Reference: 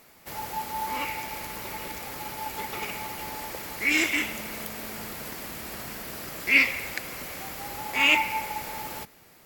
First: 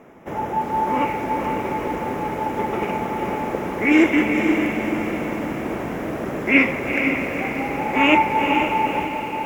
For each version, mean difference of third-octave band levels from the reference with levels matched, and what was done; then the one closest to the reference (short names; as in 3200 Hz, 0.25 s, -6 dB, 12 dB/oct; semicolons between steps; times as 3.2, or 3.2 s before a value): 10.0 dB: running mean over 10 samples; bell 320 Hz +12 dB 2.9 oct; diffused feedback echo 0.482 s, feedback 48%, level -5 dB; lo-fi delay 0.342 s, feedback 55%, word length 7-bit, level -14.5 dB; gain +4.5 dB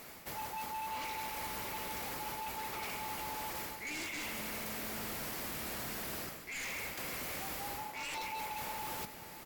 6.0 dB: dynamic EQ 990 Hz, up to +5 dB, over -44 dBFS, Q 2.7; reverse; compressor 8:1, threshold -40 dBFS, peak gain reduction 25 dB; reverse; wavefolder -40 dBFS; outdoor echo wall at 90 m, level -14 dB; gain +4.5 dB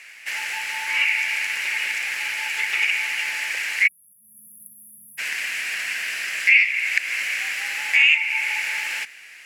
15.5 dB: weighting filter ITU-R 468; compressor 4:1, threshold -28 dBFS, peak gain reduction 17 dB; spectral delete 3.87–5.18, 230–9800 Hz; band shelf 2100 Hz +16 dB 1.1 oct; gain -2.5 dB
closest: second